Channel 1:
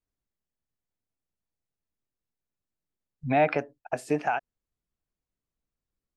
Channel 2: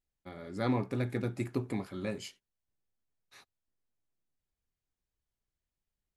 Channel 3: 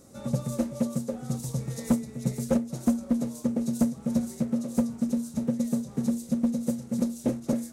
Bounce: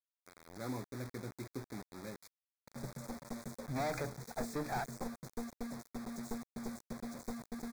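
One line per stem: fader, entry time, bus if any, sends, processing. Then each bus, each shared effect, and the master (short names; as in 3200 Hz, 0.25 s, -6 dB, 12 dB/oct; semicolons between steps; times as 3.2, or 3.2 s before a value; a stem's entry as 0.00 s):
-2.0 dB, 0.45 s, no send, tube stage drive 32 dB, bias 0.65
-11.0 dB, 0.00 s, no send, HPF 62 Hz 12 dB/oct
-15.0 dB, 2.50 s, no send, one-sided fold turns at -24.5 dBFS; bell 310 Hz -5 dB 0.21 oct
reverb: off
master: LPF 8100 Hz 24 dB/oct; requantised 8-bit, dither none; Butterworth band-stop 2900 Hz, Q 2.1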